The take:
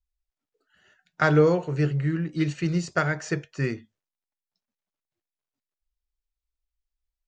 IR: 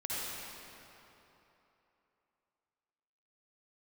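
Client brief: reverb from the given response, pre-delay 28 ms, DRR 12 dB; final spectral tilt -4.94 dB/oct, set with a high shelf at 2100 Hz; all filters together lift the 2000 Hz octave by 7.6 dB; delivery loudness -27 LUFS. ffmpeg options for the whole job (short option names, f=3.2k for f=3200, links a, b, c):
-filter_complex "[0:a]equalizer=f=2k:t=o:g=7,highshelf=f=2.1k:g=6.5,asplit=2[a][b];[1:a]atrim=start_sample=2205,adelay=28[c];[b][c]afir=irnorm=-1:irlink=0,volume=-17dB[d];[a][d]amix=inputs=2:normalize=0,volume=-5dB"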